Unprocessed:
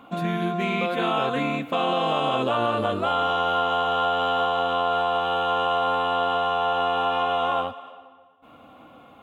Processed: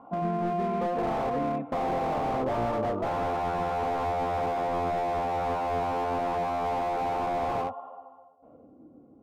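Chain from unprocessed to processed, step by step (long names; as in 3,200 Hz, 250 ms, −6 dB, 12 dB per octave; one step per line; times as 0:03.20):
low-pass filter sweep 860 Hz → 350 Hz, 0:08.24–0:08.76
slew-rate limiting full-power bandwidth 57 Hz
level −5 dB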